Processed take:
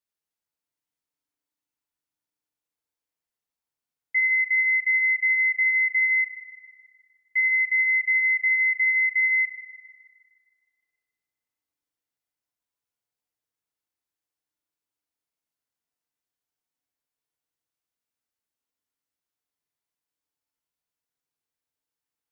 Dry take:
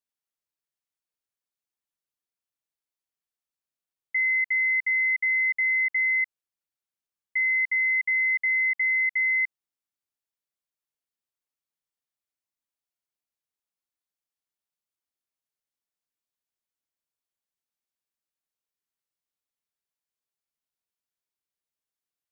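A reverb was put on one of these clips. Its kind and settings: FDN reverb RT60 2.9 s, low-frequency decay 1.2×, high-frequency decay 0.3×, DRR -0.5 dB; gain -1 dB

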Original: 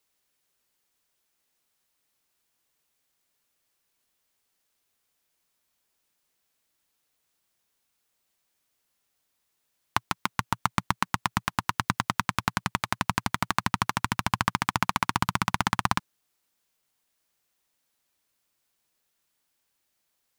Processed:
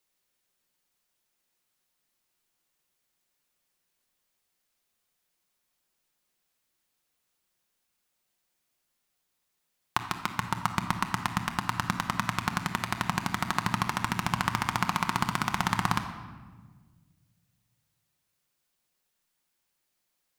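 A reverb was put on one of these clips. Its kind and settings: shoebox room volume 1400 m³, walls mixed, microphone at 0.94 m; gain -3 dB

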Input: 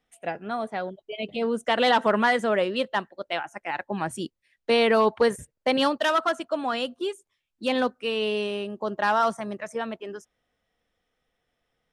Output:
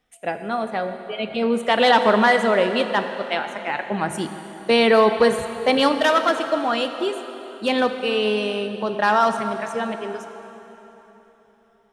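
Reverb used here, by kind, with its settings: plate-style reverb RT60 3.7 s, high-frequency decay 0.8×, DRR 7 dB; gain +4.5 dB

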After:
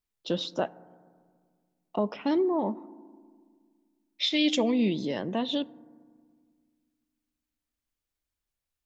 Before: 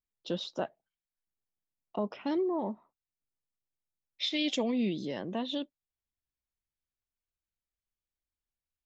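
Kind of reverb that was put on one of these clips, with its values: FDN reverb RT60 1.8 s, low-frequency decay 1.4×, high-frequency decay 0.25×, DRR 19 dB; gain +5 dB

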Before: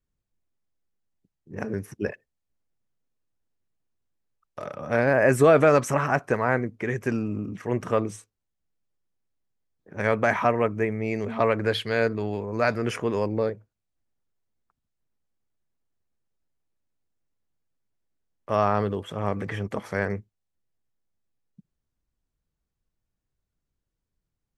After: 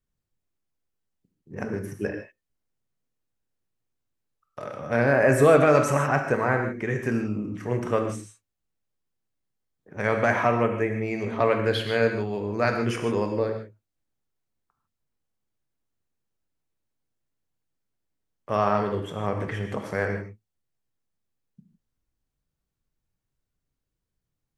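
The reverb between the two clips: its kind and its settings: non-linear reverb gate 0.18 s flat, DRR 4 dB; gain -1 dB

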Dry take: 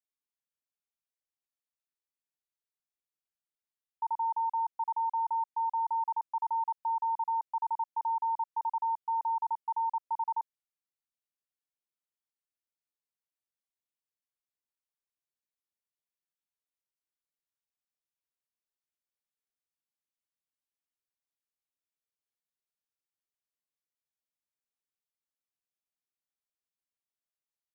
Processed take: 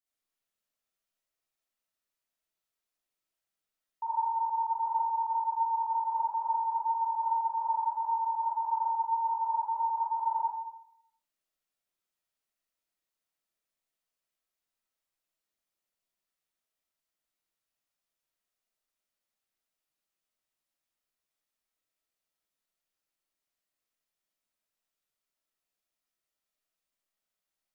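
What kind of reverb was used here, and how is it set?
digital reverb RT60 0.74 s, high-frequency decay 0.7×, pre-delay 20 ms, DRR -9 dB; gain -2.5 dB

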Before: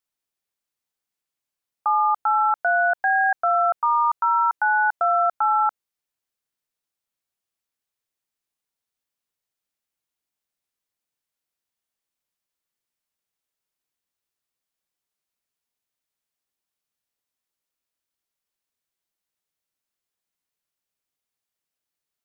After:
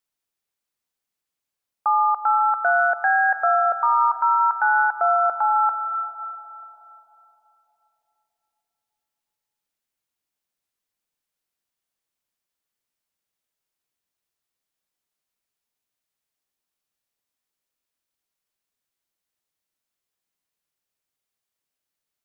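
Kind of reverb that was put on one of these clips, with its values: digital reverb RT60 3.8 s, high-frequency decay 0.25×, pre-delay 0.105 s, DRR 11 dB; gain +1 dB

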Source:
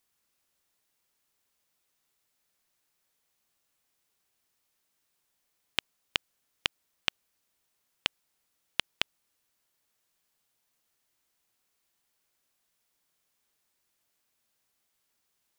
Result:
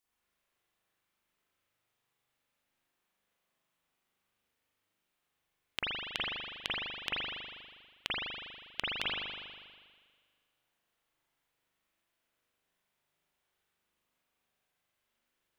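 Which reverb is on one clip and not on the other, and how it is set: spring tank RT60 1.7 s, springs 40 ms, chirp 65 ms, DRR -9 dB; gain -9 dB

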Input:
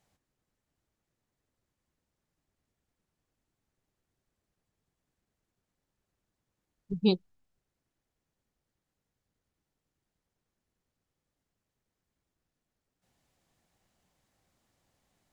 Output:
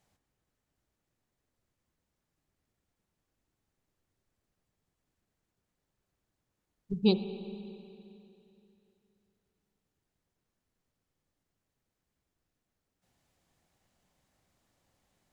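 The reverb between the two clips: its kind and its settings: spring tank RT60 2.9 s, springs 39/58 ms, chirp 65 ms, DRR 9.5 dB

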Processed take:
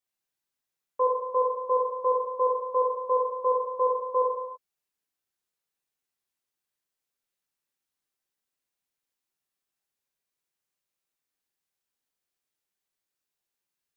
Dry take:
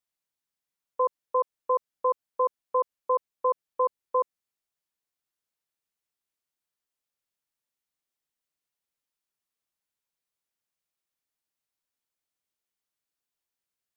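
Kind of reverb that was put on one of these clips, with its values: non-linear reverb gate 0.36 s falling, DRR -2 dB; gain -2.5 dB

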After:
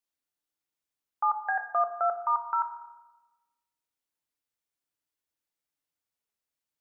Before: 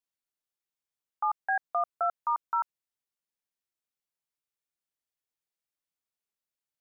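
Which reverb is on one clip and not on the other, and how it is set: FDN reverb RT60 1.1 s, low-frequency decay 1.35×, high-frequency decay 0.35×, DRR 6 dB; gain +1 dB

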